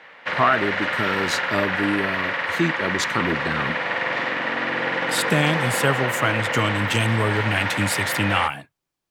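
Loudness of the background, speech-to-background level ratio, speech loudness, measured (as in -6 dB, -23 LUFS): -24.0 LUFS, 0.0 dB, -24.0 LUFS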